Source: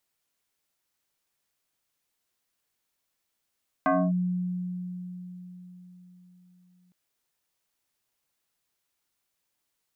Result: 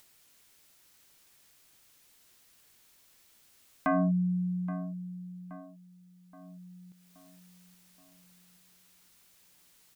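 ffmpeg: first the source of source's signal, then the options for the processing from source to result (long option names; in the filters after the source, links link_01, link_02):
-f lavfi -i "aevalsrc='0.112*pow(10,-3*t/4.41)*sin(2*PI*180*t+2.8*clip(1-t/0.26,0,1)*sin(2*PI*2.53*180*t))':duration=3.06:sample_rate=44100"
-filter_complex "[0:a]equalizer=frequency=760:width_type=o:width=2.2:gain=-4,acompressor=mode=upward:threshold=-47dB:ratio=2.5,asplit=2[link_01][link_02];[link_02]adelay=824,lowpass=frequency=1800:poles=1,volume=-14dB,asplit=2[link_03][link_04];[link_04]adelay=824,lowpass=frequency=1800:poles=1,volume=0.53,asplit=2[link_05][link_06];[link_06]adelay=824,lowpass=frequency=1800:poles=1,volume=0.53,asplit=2[link_07][link_08];[link_08]adelay=824,lowpass=frequency=1800:poles=1,volume=0.53,asplit=2[link_09][link_10];[link_10]adelay=824,lowpass=frequency=1800:poles=1,volume=0.53[link_11];[link_01][link_03][link_05][link_07][link_09][link_11]amix=inputs=6:normalize=0"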